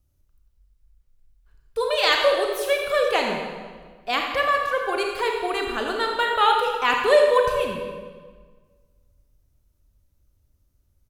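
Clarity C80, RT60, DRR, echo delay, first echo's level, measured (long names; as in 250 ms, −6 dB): 4.0 dB, 1.5 s, 1.0 dB, 84 ms, −11.0 dB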